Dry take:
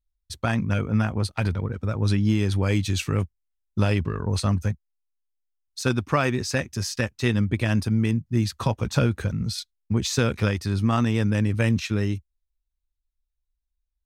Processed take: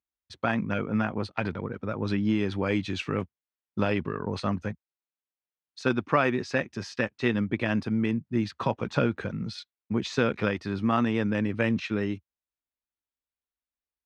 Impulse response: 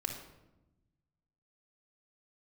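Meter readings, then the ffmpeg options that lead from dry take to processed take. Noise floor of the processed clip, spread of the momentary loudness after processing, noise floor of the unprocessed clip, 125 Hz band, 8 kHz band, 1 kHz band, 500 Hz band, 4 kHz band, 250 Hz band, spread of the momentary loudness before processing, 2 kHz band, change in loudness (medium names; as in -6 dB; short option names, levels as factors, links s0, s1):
under -85 dBFS, 8 LU, -80 dBFS, -10.0 dB, -15.5 dB, 0.0 dB, 0.0 dB, -6.5 dB, -2.0 dB, 7 LU, -1.0 dB, -4.0 dB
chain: -af "highpass=200,lowpass=2900"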